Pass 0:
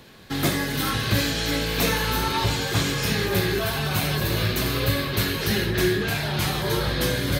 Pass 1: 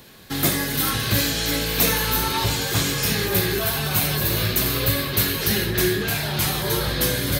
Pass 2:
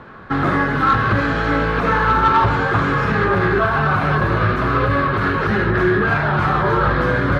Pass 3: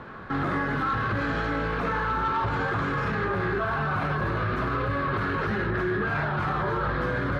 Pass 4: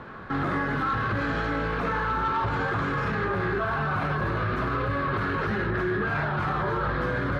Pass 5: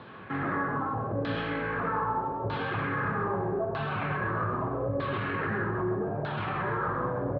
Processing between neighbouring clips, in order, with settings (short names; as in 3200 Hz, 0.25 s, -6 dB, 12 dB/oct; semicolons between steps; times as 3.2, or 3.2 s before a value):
high shelf 7500 Hz +12 dB
limiter -12.5 dBFS, peak gain reduction 7.5 dB; synth low-pass 1300 Hz, resonance Q 3.6; soft clip -13.5 dBFS, distortion -22 dB; gain +7.5 dB
limiter -18 dBFS, peak gain reduction 11.5 dB; gain -2 dB
nothing audible
LFO low-pass saw down 0.8 Hz 500–3900 Hz; speaker cabinet 100–5500 Hz, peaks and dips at 110 Hz +4 dB, 1400 Hz -6 dB, 2000 Hz -3 dB; echo 0.131 s -8.5 dB; gain -4.5 dB